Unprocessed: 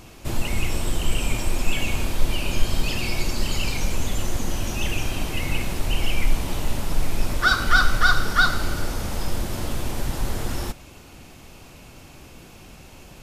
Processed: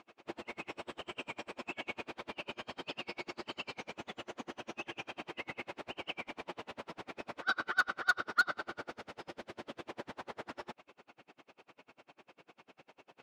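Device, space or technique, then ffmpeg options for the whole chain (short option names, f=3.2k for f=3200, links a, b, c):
helicopter radio: -filter_complex "[0:a]highpass=380,lowpass=2.6k,aeval=exprs='val(0)*pow(10,-37*(0.5-0.5*cos(2*PI*10*n/s))/20)':c=same,asoftclip=type=hard:threshold=-17.5dB,asettb=1/sr,asplit=3[a][b][c];[a]atrim=end=8.904[d];[b]atrim=start=8.9:end=9.88,asetpts=PTS-STARTPTS,afade=t=in:d=0.004:c=qsin,afade=t=out:st=0.976:d=0.004:c=qsin,equalizer=f=990:t=o:w=1.3:g=-4[e];[c]atrim=start=9.876[f];[d][e]acrossfade=d=0.004:c1=hsin:c2=qsin[g];[g][f]acrossfade=d=0.004:c1=qsin:c2=hsin,volume=-3dB"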